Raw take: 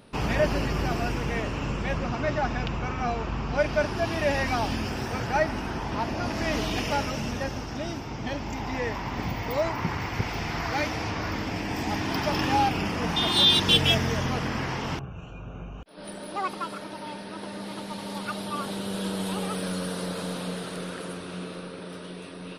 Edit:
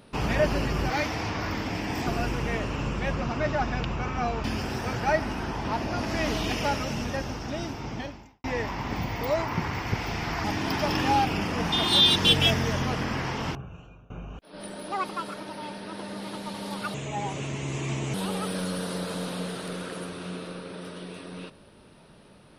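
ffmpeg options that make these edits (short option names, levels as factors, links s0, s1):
-filter_complex "[0:a]asplit=9[s0][s1][s2][s3][s4][s5][s6][s7][s8];[s0]atrim=end=0.902[s9];[s1]atrim=start=10.708:end=11.882[s10];[s2]atrim=start=0.898:end=3.272[s11];[s3]atrim=start=4.708:end=8.71,asetpts=PTS-STARTPTS,afade=t=out:st=3.492:d=0.51:c=qua[s12];[s4]atrim=start=8.71:end=10.712,asetpts=PTS-STARTPTS,afade=t=in:d=0.004:c=hsin[s13];[s5]atrim=start=11.878:end=15.54,asetpts=PTS-STARTPTS,afade=t=out:st=3.072:d=0.59:silence=0.1[s14];[s6]atrim=start=15.54:end=18.384,asetpts=PTS-STARTPTS,afade=t=in:d=0.004:c=hsin:silence=0.1[s15];[s7]atrim=start=18.38:end=19.22,asetpts=PTS-STARTPTS,asetrate=30870,aresample=44100[s16];[s8]atrim=start=19.216[s17];[s9][s10]acrossfade=d=0.004:c1=hsin:c2=hsin[s18];[s18][s11]acrossfade=d=0.004:c1=hsin:c2=hsin[s19];[s12][s13]concat=n=2:v=0:a=1[s20];[s19][s20]acrossfade=d=0.004:c1=hsin:c2=hsin[s21];[s14][s15]concat=n=2:v=0:a=1[s22];[s21][s22]acrossfade=d=0.004:c1=hsin:c2=hsin[s23];[s23][s16]acrossfade=d=0.004:c1=hsin:c2=hsin[s24];[s24][s17]acrossfade=d=0.004:c1=hsin:c2=hsin"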